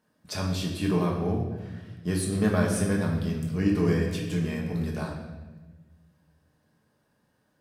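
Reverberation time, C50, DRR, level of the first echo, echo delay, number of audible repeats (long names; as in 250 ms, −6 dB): 1.2 s, 4.0 dB, −1.5 dB, no echo audible, no echo audible, no echo audible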